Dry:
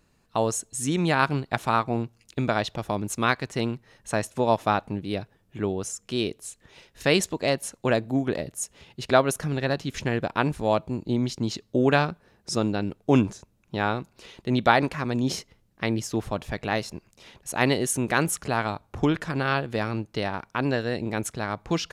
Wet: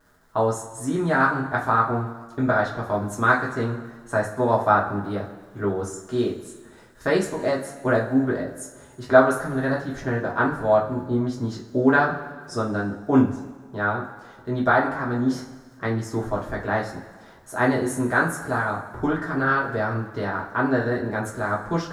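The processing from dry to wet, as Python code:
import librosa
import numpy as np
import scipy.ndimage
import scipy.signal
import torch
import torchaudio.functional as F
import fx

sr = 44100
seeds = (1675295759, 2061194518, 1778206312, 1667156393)

p1 = fx.dmg_crackle(x, sr, seeds[0], per_s=240.0, level_db=-43.0)
p2 = fx.rider(p1, sr, range_db=10, speed_s=2.0)
p3 = p1 + F.gain(torch.from_numpy(p2), 2.0).numpy()
p4 = fx.high_shelf_res(p3, sr, hz=2000.0, db=-8.5, q=3.0)
p5 = fx.rev_double_slope(p4, sr, seeds[1], early_s=0.27, late_s=1.5, knee_db=-16, drr_db=-4.5)
y = F.gain(torch.from_numpy(p5), -12.0).numpy()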